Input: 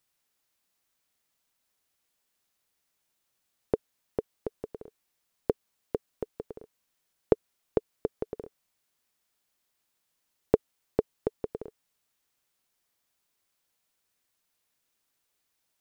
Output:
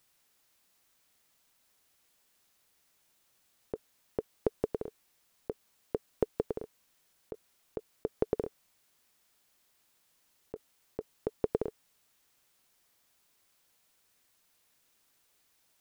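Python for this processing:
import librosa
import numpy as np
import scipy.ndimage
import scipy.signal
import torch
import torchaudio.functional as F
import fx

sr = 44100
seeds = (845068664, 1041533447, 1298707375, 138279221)

y = fx.over_compress(x, sr, threshold_db=-32.0, ratio=-1.0)
y = y * 10.0 ** (1.5 / 20.0)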